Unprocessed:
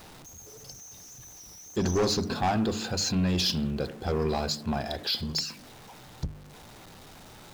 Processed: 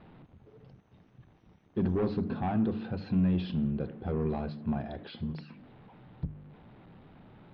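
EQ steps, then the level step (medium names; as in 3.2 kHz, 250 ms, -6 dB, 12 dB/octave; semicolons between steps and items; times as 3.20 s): low-pass 3.7 kHz 24 dB/octave; distance through air 310 m; peaking EQ 180 Hz +9 dB 2.1 oct; -8.0 dB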